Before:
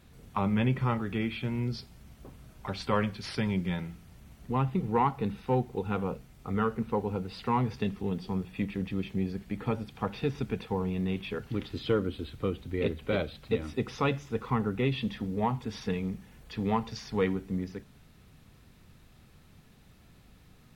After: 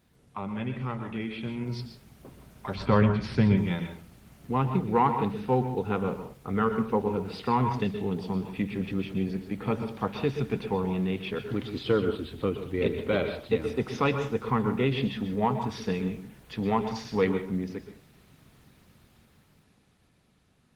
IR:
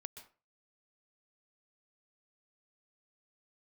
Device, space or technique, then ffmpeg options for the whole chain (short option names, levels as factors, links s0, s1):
far-field microphone of a smart speaker: -filter_complex "[0:a]asettb=1/sr,asplit=3[s0][s1][s2];[s0]atrim=end=2.754[s3];[s1]atrim=start=2.75:end=3.57,asetpts=PTS-STARTPTS,afade=t=in:d=0.004:c=qsin,afade=t=out:st=0.816:d=0.004:c=qsin,aemphasis=mode=reproduction:type=bsi[s4];[s2]atrim=start=3.566[s5];[s3][s4]acrossfade=d=0.004:c1=hsin:c2=qsin[s6];[s6][s5]acrossfade=d=0.004:c1=qsin:c2=hsin[s7];[1:a]atrim=start_sample=2205[s8];[s7][s8]afir=irnorm=-1:irlink=0,highpass=f=120:p=1,dynaudnorm=f=100:g=31:m=2.82" -ar 48000 -c:a libopus -b:a 20k